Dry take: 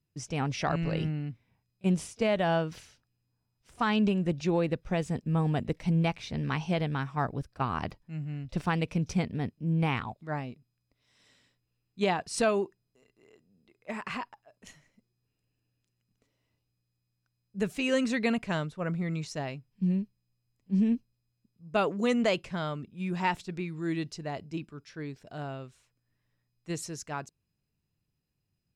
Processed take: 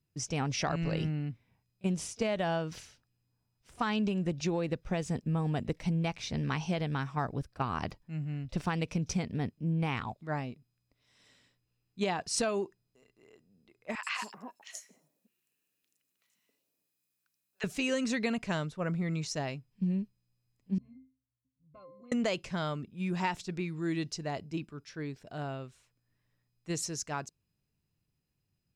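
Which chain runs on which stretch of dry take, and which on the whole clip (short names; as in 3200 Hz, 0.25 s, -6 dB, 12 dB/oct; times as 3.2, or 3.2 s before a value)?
13.95–17.64 HPF 170 Hz 24 dB/oct + tilt +3 dB/oct + three bands offset in time mids, highs, lows 80/270 ms, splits 750/4900 Hz
20.78–22.12 octave resonator C, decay 0.32 s + compressor 4:1, threshold -50 dBFS
whole clip: dynamic EQ 6000 Hz, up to +6 dB, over -56 dBFS, Q 1.4; compressor, threshold -27 dBFS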